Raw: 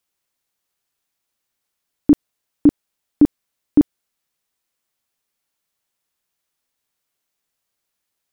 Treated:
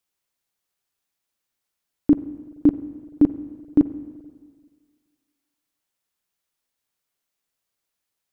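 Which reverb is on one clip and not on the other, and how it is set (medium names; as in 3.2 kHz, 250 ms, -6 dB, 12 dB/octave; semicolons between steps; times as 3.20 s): spring tank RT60 1.7 s, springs 43/48/54 ms, chirp 70 ms, DRR 13 dB; trim -3.5 dB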